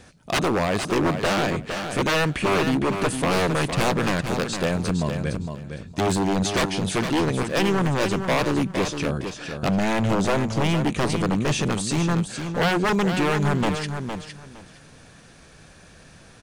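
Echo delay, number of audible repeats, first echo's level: 0.46 s, 2, -7.5 dB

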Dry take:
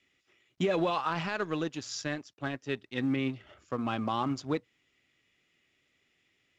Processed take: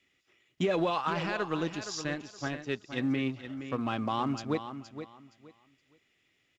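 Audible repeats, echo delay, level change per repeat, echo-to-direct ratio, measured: 2, 0.469 s, -13.0 dB, -10.5 dB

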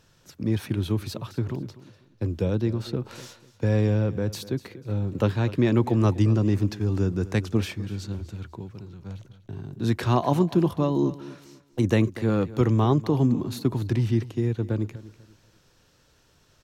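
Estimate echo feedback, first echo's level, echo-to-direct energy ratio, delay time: 29%, -17.0 dB, -16.5 dB, 0.246 s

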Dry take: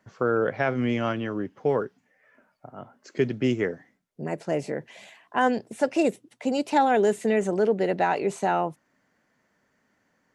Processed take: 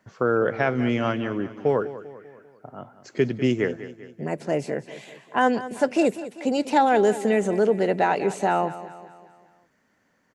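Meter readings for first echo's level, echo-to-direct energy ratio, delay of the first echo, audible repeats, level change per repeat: -14.5 dB, -13.5 dB, 0.197 s, 4, -6.0 dB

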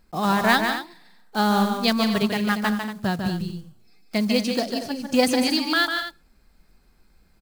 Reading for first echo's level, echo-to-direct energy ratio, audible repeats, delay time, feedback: -6.0 dB, -4.5 dB, 3, 0.148 s, no steady repeat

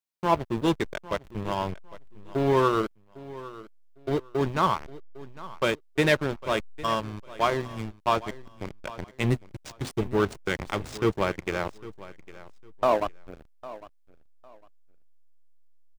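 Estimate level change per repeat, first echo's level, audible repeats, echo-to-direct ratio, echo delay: -12.5 dB, -18.0 dB, 2, -18.0 dB, 0.804 s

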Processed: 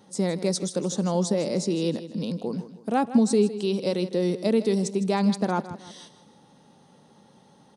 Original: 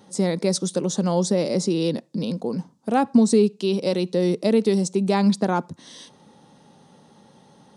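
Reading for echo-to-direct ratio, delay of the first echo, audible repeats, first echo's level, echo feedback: -13.0 dB, 0.158 s, 3, -14.0 dB, 40%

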